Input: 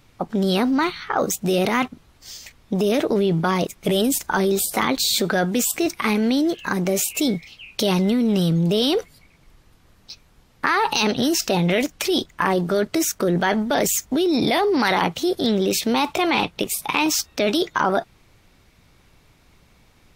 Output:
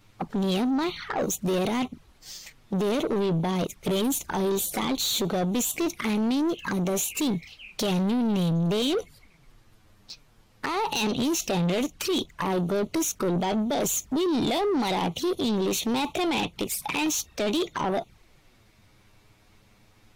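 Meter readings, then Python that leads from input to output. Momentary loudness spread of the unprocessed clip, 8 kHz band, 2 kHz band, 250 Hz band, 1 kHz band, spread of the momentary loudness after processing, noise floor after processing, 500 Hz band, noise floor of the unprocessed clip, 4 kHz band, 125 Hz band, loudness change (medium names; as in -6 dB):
5 LU, -4.5 dB, -9.5 dB, -4.5 dB, -7.0 dB, 6 LU, -59 dBFS, -6.0 dB, -56 dBFS, -6.0 dB, -4.5 dB, -5.5 dB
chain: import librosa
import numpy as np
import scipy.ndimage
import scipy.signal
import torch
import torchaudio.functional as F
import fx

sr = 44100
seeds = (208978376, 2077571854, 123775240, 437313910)

y = fx.env_flanger(x, sr, rest_ms=10.5, full_db=-20.0)
y = 10.0 ** (-21.5 / 20.0) * np.tanh(y / 10.0 ** (-21.5 / 20.0))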